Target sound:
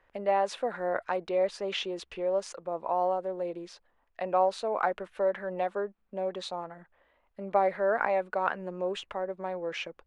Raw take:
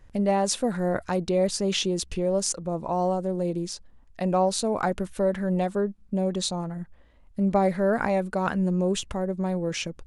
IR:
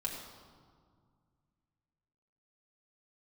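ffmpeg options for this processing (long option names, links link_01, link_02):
-filter_complex "[0:a]acrossover=split=430 3200:gain=0.0794 1 0.0794[link_01][link_02][link_03];[link_01][link_02][link_03]amix=inputs=3:normalize=0"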